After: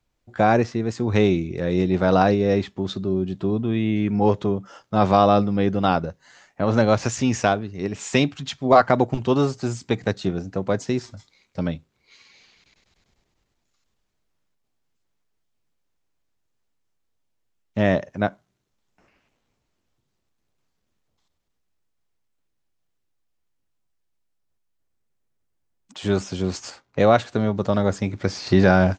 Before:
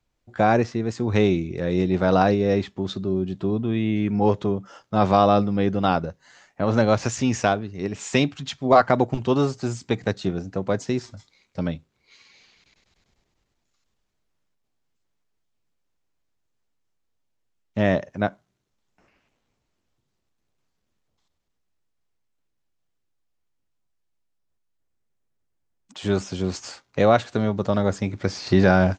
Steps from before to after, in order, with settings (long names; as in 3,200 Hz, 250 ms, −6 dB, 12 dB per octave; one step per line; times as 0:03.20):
0:26.70–0:27.55: one half of a high-frequency compander decoder only
level +1 dB